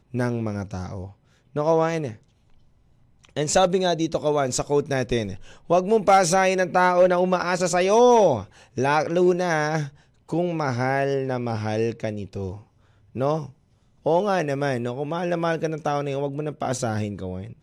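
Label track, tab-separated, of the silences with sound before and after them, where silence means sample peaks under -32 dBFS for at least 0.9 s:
2.130000	3.370000	silence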